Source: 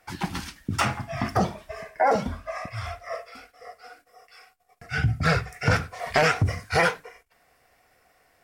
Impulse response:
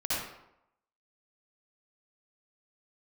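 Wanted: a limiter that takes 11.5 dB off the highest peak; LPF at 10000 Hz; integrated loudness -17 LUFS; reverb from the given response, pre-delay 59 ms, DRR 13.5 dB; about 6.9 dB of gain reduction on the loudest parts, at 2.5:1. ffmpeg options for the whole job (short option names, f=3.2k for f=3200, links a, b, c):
-filter_complex "[0:a]lowpass=10k,acompressor=threshold=-27dB:ratio=2.5,alimiter=limit=-22.5dB:level=0:latency=1,asplit=2[a][b];[1:a]atrim=start_sample=2205,adelay=59[c];[b][c]afir=irnorm=-1:irlink=0,volume=-21.5dB[d];[a][d]amix=inputs=2:normalize=0,volume=17.5dB"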